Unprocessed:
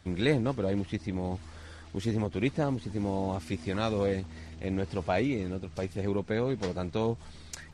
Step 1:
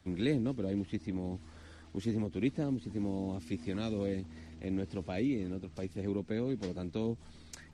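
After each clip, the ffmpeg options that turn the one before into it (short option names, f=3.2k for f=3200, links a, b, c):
-filter_complex "[0:a]acrossover=split=240|580|1800[a][b][c][d];[c]acompressor=threshold=-47dB:ratio=6[e];[a][b][e][d]amix=inputs=4:normalize=0,equalizer=f=260:w=1.5:g=6.5,volume=-7dB"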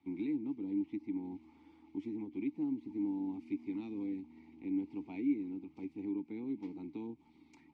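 -filter_complex "[0:a]alimiter=level_in=2dB:limit=-24dB:level=0:latency=1:release=447,volume=-2dB,asplit=3[a][b][c];[a]bandpass=f=300:t=q:w=8,volume=0dB[d];[b]bandpass=f=870:t=q:w=8,volume=-6dB[e];[c]bandpass=f=2.24k:t=q:w=8,volume=-9dB[f];[d][e][f]amix=inputs=3:normalize=0,volume=6dB"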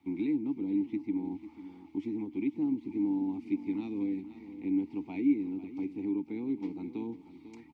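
-af "aecho=1:1:496:0.211,volume=5.5dB"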